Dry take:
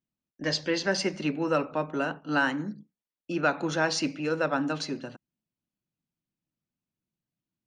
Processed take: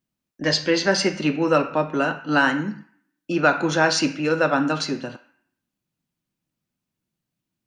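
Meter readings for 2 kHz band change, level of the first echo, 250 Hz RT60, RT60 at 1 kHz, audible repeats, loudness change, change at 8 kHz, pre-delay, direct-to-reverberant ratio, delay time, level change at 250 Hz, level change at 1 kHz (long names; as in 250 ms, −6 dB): +7.5 dB, no echo audible, 0.95 s, 0.60 s, no echo audible, +7.5 dB, +7.5 dB, 4 ms, 7.5 dB, no echo audible, +7.0 dB, +8.0 dB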